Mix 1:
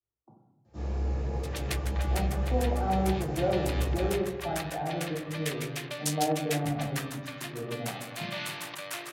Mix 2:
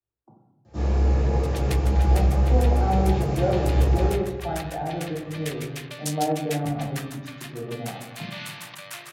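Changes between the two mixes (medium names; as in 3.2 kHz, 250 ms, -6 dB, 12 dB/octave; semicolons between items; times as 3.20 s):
speech +3.5 dB; first sound +10.0 dB; second sound: add peaking EQ 240 Hz -9.5 dB 2.1 oct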